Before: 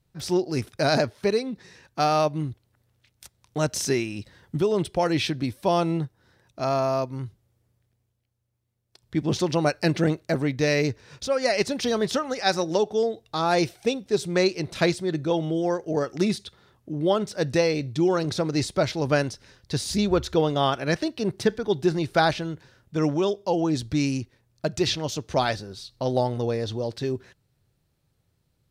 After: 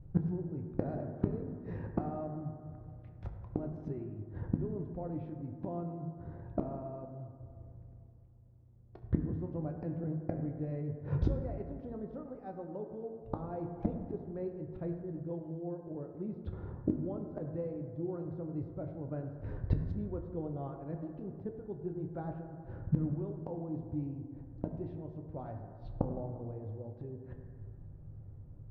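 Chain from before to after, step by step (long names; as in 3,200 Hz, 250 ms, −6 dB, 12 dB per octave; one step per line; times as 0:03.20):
low-pass filter 1,000 Hz 12 dB per octave
spectral tilt −3.5 dB per octave
gate with flip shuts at −24 dBFS, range −30 dB
convolution reverb RT60 2.3 s, pre-delay 5 ms, DRR 3.5 dB
level +6.5 dB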